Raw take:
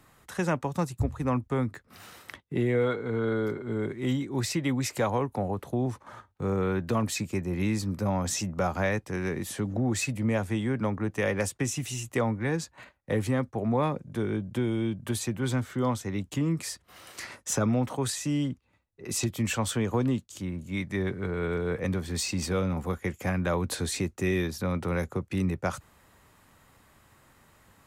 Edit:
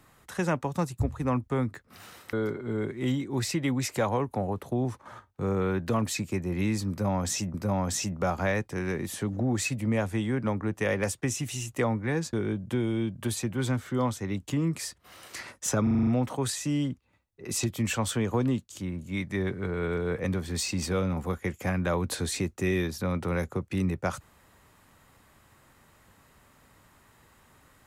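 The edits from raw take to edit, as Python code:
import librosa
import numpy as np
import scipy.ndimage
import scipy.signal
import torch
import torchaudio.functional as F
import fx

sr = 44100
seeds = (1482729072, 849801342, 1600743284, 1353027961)

y = fx.edit(x, sr, fx.cut(start_s=2.33, length_s=1.01),
    fx.repeat(start_s=7.91, length_s=0.64, count=2),
    fx.cut(start_s=12.7, length_s=1.47),
    fx.stutter(start_s=17.67, slice_s=0.04, count=7), tone=tone)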